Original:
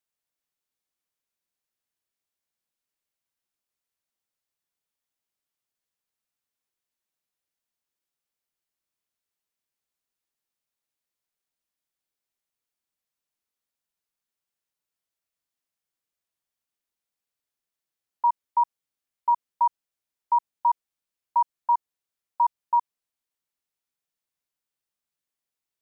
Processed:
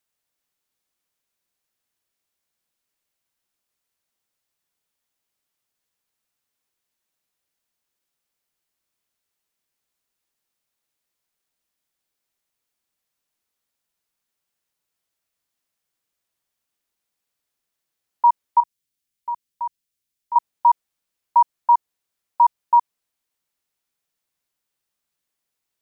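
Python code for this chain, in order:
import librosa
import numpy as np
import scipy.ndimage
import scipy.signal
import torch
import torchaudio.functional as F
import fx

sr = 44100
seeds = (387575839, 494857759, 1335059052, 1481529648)

y = fx.peak_eq(x, sr, hz=860.0, db=-13.0, octaves=2.1, at=(18.6, 20.36))
y = F.gain(torch.from_numpy(y), 7.0).numpy()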